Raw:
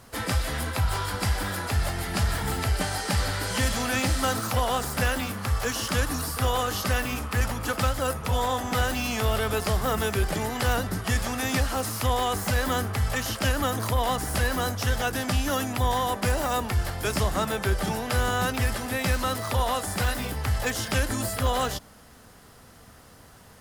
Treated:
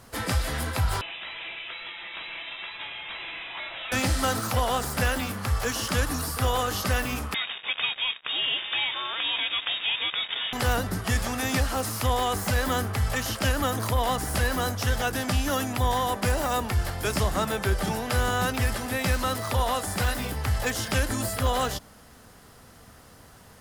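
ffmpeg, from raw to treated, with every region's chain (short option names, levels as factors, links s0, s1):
-filter_complex "[0:a]asettb=1/sr,asplit=3[s0][s1][s2];[s0]atrim=end=1.014[s3];[s1]atrim=start=1.01:end=3.92,asetpts=PTS-STARTPTS,afade=t=in:d=0.004:c=qsin,afade=t=out:st=2.906:d=0.004:c=qsin,highpass=f=1300:p=1,asoftclip=type=hard:threshold=0.0316,lowpass=f=3400:t=q:w=0.5098,lowpass=f=3400:t=q:w=0.6013,lowpass=f=3400:t=q:w=0.9,lowpass=f=3400:t=q:w=2.563,afreqshift=-4000[s4];[s2]atrim=start=3.916[s5];[s3][s4]acrossfade=d=0.004:c1=hsin:c2=qsin[s6];[s6][s5]acrossfade=d=0.004:c1=qsin:c2=hsin,asettb=1/sr,asplit=3[s7][s8][s9];[s7]atrim=end=7.344[s10];[s8]atrim=start=7.34:end=10.53,asetpts=PTS-STARTPTS,afade=t=in:d=0.004:c=qsin,afade=t=out:st=3.186:d=0.004:c=qsin,highpass=f=260:p=1,acrusher=bits=4:mix=0:aa=0.5,lowpass=f=3200:t=q:w=0.5098,lowpass=f=3200:t=q:w=0.6013,lowpass=f=3200:t=q:w=0.9,lowpass=f=3200:t=q:w=2.563,afreqshift=-3800[s11];[s9]atrim=start=10.526[s12];[s10][s11]acrossfade=d=0.004:c1=hsin:c2=qsin[s13];[s13][s12]acrossfade=d=0.004:c1=qsin:c2=hsin"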